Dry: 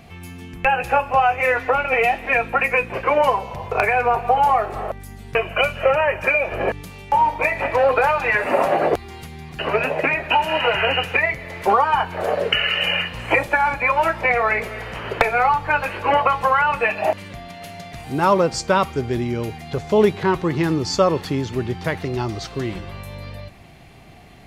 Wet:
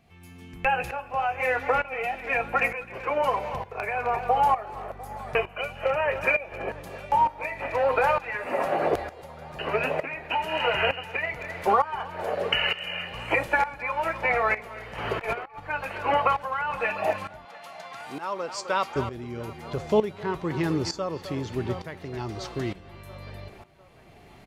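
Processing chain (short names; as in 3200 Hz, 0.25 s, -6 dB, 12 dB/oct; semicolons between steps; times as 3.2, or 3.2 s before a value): on a send: band-limited delay 0.699 s, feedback 62%, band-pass 870 Hz, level -17 dB; 14.98–15.6 on the sum: negative-ratio compressor -24 dBFS, ratio -0.5; 17.45–18.96 weighting filter A; speakerphone echo 0.26 s, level -12 dB; tremolo saw up 1.1 Hz, depth 80%; gain -4 dB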